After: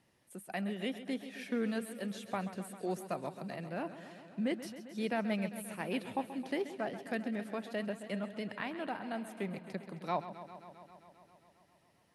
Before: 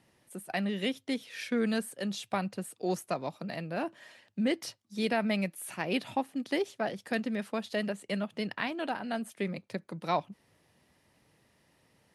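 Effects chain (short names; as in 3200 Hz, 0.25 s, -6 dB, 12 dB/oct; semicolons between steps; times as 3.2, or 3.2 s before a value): dynamic EQ 5000 Hz, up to -7 dB, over -53 dBFS, Q 0.92; warbling echo 0.133 s, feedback 77%, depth 60 cents, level -13 dB; gain -5 dB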